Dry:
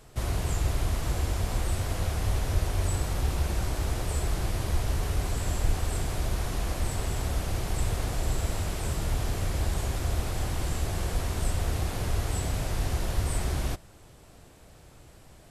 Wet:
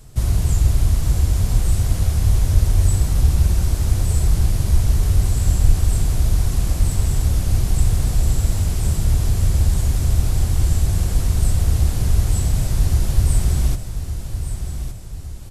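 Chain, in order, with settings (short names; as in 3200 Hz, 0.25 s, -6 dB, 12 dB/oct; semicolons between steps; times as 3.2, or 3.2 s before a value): tone controls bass +13 dB, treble +9 dB; feedback echo 1.163 s, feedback 46%, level -9.5 dB; gain -1 dB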